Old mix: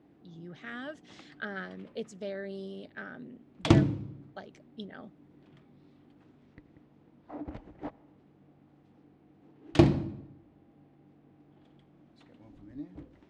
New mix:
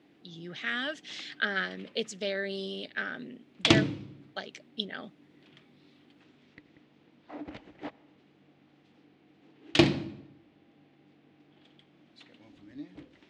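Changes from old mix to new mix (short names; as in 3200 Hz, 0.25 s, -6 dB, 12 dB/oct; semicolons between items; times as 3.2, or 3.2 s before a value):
speech +4.5 dB; master: add weighting filter D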